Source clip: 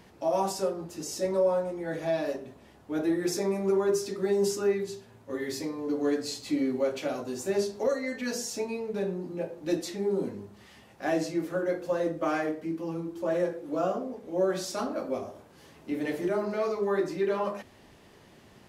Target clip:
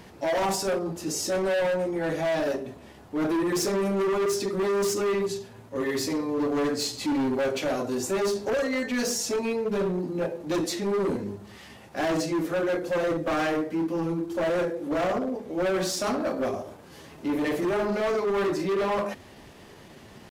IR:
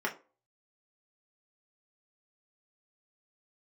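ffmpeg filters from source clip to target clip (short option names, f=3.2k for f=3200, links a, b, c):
-af "asoftclip=type=hard:threshold=-30dB,atempo=0.92,volume=7dB"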